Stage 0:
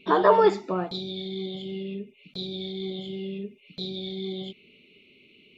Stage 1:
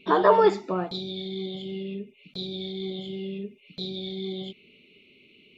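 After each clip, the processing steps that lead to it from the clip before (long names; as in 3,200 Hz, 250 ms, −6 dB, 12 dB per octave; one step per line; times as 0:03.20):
no processing that can be heard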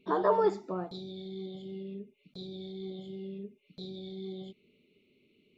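parametric band 2,700 Hz −10.5 dB 1.3 octaves
level −7 dB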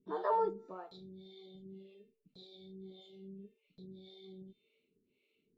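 tuned comb filter 450 Hz, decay 0.47 s, mix 80%
two-band tremolo in antiphase 1.8 Hz, depth 100%, crossover 420 Hz
level +7 dB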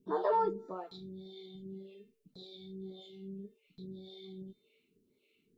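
auto-filter notch sine 1.8 Hz 520–2,800 Hz
level +5.5 dB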